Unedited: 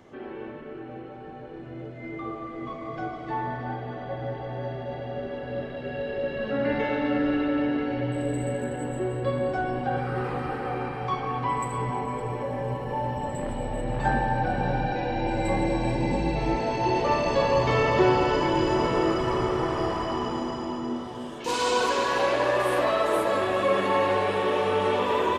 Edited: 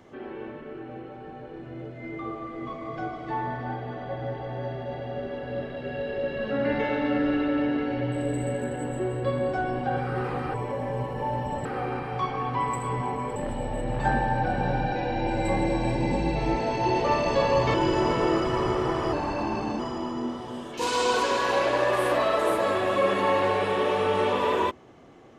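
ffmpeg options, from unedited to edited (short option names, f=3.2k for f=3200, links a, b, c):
-filter_complex "[0:a]asplit=7[a][b][c][d][e][f][g];[a]atrim=end=10.542[h];[b]atrim=start=12.248:end=13.362[i];[c]atrim=start=10.538:end=12.252[j];[d]atrim=start=13.358:end=17.742[k];[e]atrim=start=18.478:end=19.874[l];[f]atrim=start=19.87:end=20.46,asetpts=PTS-STARTPTS,asetrate=39249,aresample=44100[m];[g]atrim=start=20.456[n];[h][i]acrossfade=d=0.004:c1=hsin:c2=hsin[o];[o][j]acrossfade=d=0.004:c1=hsin:c2=hsin[p];[p][k]acrossfade=d=0.004:c1=hsin:c2=hsin[q];[q][l]acrossfade=d=0.004:c1=hsin:c2=hsin[r];[r][m]acrossfade=d=0.004:c1=hsin:c2=hsin[s];[s][n]acrossfade=d=0.004:c1=hsin:c2=hsin"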